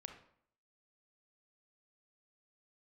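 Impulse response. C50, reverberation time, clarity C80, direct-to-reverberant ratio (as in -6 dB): 7.5 dB, 0.65 s, 11.5 dB, 5.5 dB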